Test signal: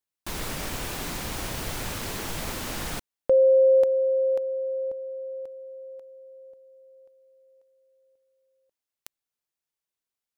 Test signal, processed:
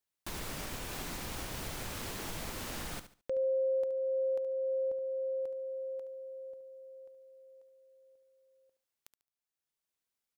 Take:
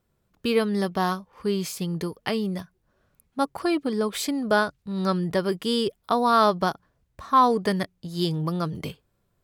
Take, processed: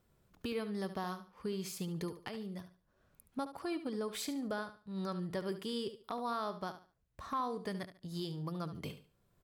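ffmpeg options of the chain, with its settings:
ffmpeg -i in.wav -af "acompressor=threshold=-32dB:ratio=6:attack=0.19:release=723:knee=6:detection=rms,aecho=1:1:72|144|216:0.251|0.0678|0.0183" out.wav

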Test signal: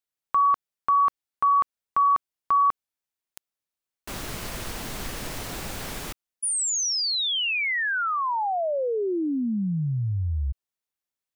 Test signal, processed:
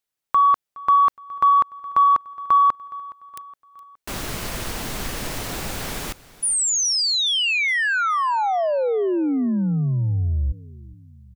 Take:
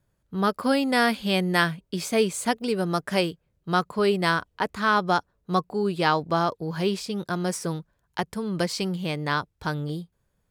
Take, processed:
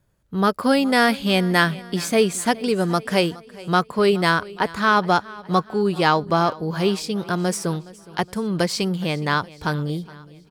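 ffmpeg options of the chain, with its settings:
ffmpeg -i in.wav -filter_complex "[0:a]asplit=2[link_01][link_02];[link_02]asoftclip=type=tanh:threshold=-14.5dB,volume=-6.5dB[link_03];[link_01][link_03]amix=inputs=2:normalize=0,aecho=1:1:417|834|1251|1668:0.0944|0.0491|0.0255|0.0133,volume=1.5dB" out.wav

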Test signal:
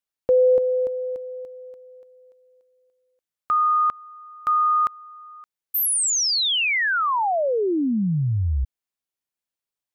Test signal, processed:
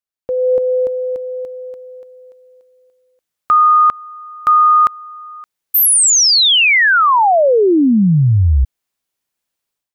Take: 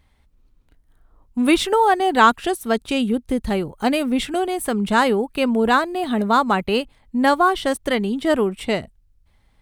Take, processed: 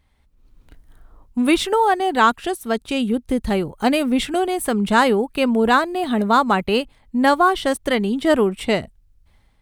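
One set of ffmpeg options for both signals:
ffmpeg -i in.wav -af "dynaudnorm=framelen=360:gausssize=3:maxgain=15dB,volume=-3.5dB" out.wav

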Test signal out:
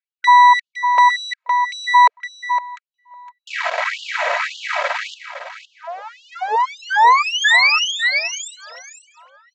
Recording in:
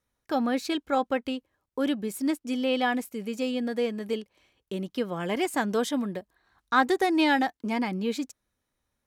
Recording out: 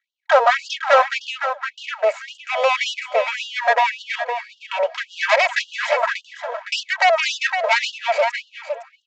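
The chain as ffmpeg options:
ffmpeg -i in.wav -filter_complex "[0:a]acompressor=threshold=-28dB:ratio=6,highshelf=frequency=3000:width_type=q:width=3:gain=-11.5,aeval=exprs='max(val(0),0)':channel_layout=same,aecho=1:1:3.1:0.67,asplit=2[link_01][link_02];[link_02]aecho=0:1:511:0.282[link_03];[link_01][link_03]amix=inputs=2:normalize=0,apsyclip=26.5dB,aresample=16000,aresample=44100,tiltshelf=frequency=970:gain=6.5,asplit=2[link_04][link_05];[link_05]adelay=709,lowpass=frequency=1100:poles=1,volume=-18.5dB,asplit=2[link_06][link_07];[link_07]adelay=709,lowpass=frequency=1100:poles=1,volume=0.51,asplit=2[link_08][link_09];[link_09]adelay=709,lowpass=frequency=1100:poles=1,volume=0.51,asplit=2[link_10][link_11];[link_11]adelay=709,lowpass=frequency=1100:poles=1,volume=0.51[link_12];[link_06][link_08][link_10][link_12]amix=inputs=4:normalize=0[link_13];[link_04][link_13]amix=inputs=2:normalize=0,agate=range=-13dB:threshold=-22dB:ratio=16:detection=peak,afftfilt=real='re*gte(b*sr/1024,440*pow(2800/440,0.5+0.5*sin(2*PI*1.8*pts/sr)))':imag='im*gte(b*sr/1024,440*pow(2800/440,0.5+0.5*sin(2*PI*1.8*pts/sr)))':win_size=1024:overlap=0.75,volume=-1dB" out.wav

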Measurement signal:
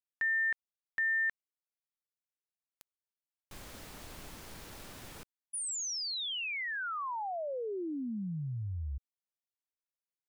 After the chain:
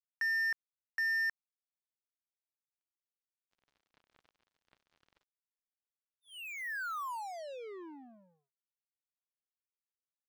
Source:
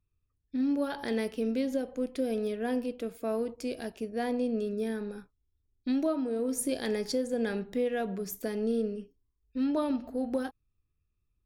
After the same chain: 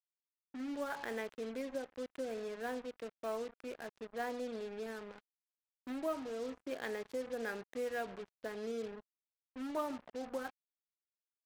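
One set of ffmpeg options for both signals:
ffmpeg -i in.wav -af "bandpass=frequency=1500:width_type=q:width=0.86:csg=0,adynamicsmooth=sensitivity=4.5:basefreq=1500,acrusher=bits=7:mix=0:aa=0.5" out.wav

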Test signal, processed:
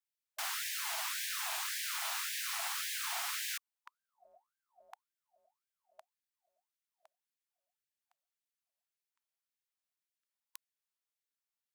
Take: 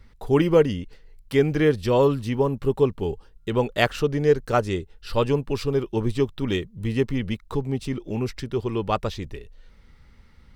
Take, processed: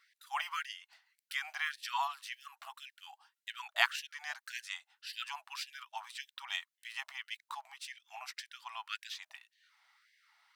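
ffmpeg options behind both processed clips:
ffmpeg -i in.wav -af "afftfilt=real='re*gte(b*sr/1024,610*pow(1600/610,0.5+0.5*sin(2*PI*1.8*pts/sr)))':imag='im*gte(b*sr/1024,610*pow(1600/610,0.5+0.5*sin(2*PI*1.8*pts/sr)))':win_size=1024:overlap=0.75,volume=-4.5dB" out.wav

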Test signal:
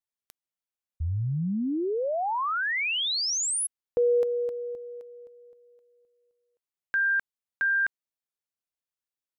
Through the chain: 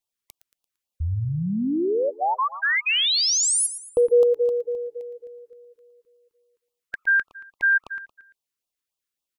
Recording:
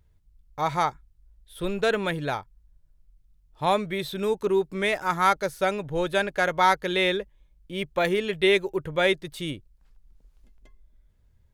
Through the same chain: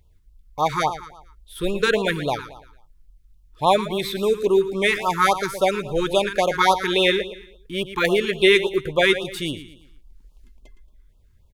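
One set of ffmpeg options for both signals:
ffmpeg -i in.wav -filter_complex "[0:a]equalizer=frequency=140:width_type=o:width=2:gain=-4.5,asplit=2[link_01][link_02];[link_02]aecho=0:1:114|228|342|456:0.237|0.0925|0.0361|0.0141[link_03];[link_01][link_03]amix=inputs=2:normalize=0,afftfilt=real='re*(1-between(b*sr/1024,600*pow(1900/600,0.5+0.5*sin(2*PI*3.6*pts/sr))/1.41,600*pow(1900/600,0.5+0.5*sin(2*PI*3.6*pts/sr))*1.41))':imag='im*(1-between(b*sr/1024,600*pow(1900/600,0.5+0.5*sin(2*PI*3.6*pts/sr))/1.41,600*pow(1900/600,0.5+0.5*sin(2*PI*3.6*pts/sr))*1.41))':win_size=1024:overlap=0.75,volume=6.5dB" out.wav

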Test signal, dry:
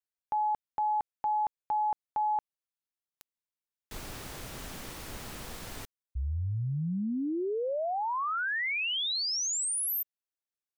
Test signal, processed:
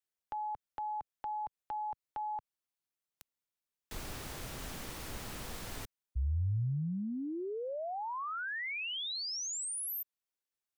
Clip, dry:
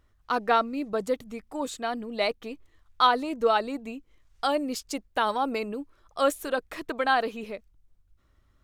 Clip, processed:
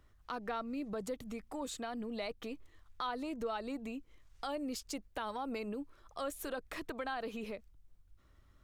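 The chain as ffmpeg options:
ffmpeg -i in.wav -filter_complex "[0:a]acrossover=split=130[link_01][link_02];[link_02]acompressor=threshold=-39dB:ratio=3:attack=1.3:release=164:knee=2.83:detection=peak[link_03];[link_01][link_03]amix=inputs=2:normalize=0" out.wav

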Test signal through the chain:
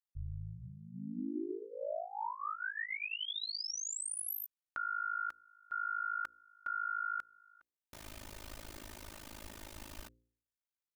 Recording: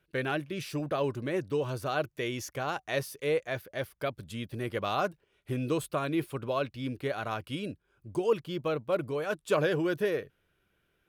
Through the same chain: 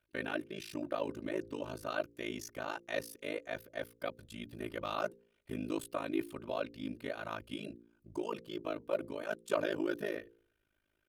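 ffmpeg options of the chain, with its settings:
ffmpeg -i in.wav -af "aecho=1:1:3.3:0.67,tremolo=f=53:d=1,bandreject=frequency=57.56:width_type=h:width=4,bandreject=frequency=115.12:width_type=h:width=4,bandreject=frequency=172.68:width_type=h:width=4,bandreject=frequency=230.24:width_type=h:width=4,bandreject=frequency=287.8:width_type=h:width=4,bandreject=frequency=345.36:width_type=h:width=4,bandreject=frequency=402.92:width_type=h:width=4,bandreject=frequency=460.48:width_type=h:width=4,bandreject=frequency=518.04:width_type=h:width=4,volume=-4dB" out.wav

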